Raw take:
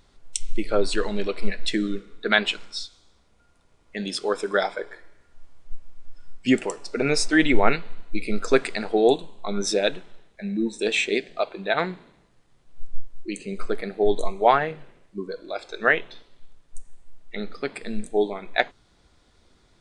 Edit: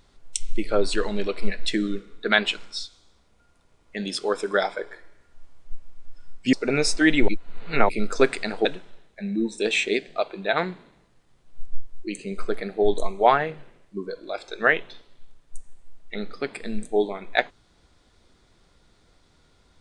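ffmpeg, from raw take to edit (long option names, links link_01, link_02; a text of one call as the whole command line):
ffmpeg -i in.wav -filter_complex "[0:a]asplit=5[link_01][link_02][link_03][link_04][link_05];[link_01]atrim=end=6.532[link_06];[link_02]atrim=start=6.848:end=7.602[link_07];[link_03]atrim=start=7.598:end=8.212,asetpts=PTS-STARTPTS,areverse[link_08];[link_04]atrim=start=8.208:end=8.972[link_09];[link_05]atrim=start=9.858[link_10];[link_06][link_07]acrossfade=duration=0.004:curve1=hsin:curve2=hsin[link_11];[link_11][link_08]acrossfade=duration=0.004:curve1=hsin:curve2=hsin[link_12];[link_12][link_09]acrossfade=duration=0.004:curve1=hsin:curve2=hsin[link_13];[link_13][link_10]acrossfade=duration=0.004:curve1=hsin:curve2=hsin" out.wav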